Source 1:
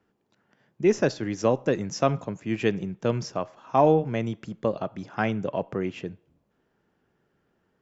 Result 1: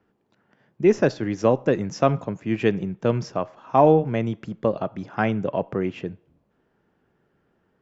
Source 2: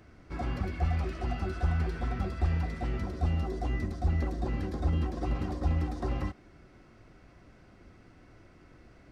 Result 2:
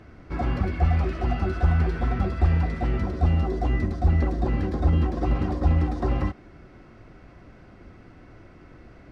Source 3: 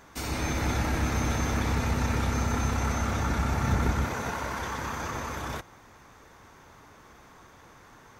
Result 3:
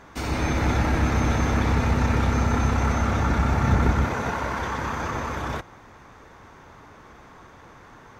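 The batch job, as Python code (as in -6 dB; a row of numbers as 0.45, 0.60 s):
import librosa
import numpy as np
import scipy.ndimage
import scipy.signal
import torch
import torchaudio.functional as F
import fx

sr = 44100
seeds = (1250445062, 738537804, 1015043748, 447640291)

y = fx.lowpass(x, sr, hz=2900.0, slope=6)
y = y * 10.0 ** (-24 / 20.0) / np.sqrt(np.mean(np.square(y)))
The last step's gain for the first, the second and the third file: +3.5, +8.0, +6.0 dB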